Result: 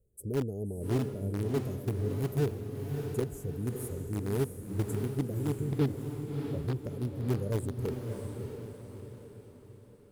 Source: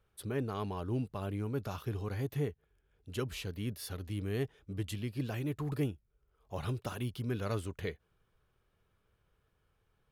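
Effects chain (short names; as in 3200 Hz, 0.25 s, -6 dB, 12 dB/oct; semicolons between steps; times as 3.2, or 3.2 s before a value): elliptic band-stop 510–7700 Hz, stop band 40 dB; in parallel at -10.5 dB: bit-crush 5-bit; 5.65–7.26 on the sum: resonant high shelf 5900 Hz -11 dB, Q 1.5; diffused feedback echo 0.64 s, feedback 46%, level -5 dB; gain +3 dB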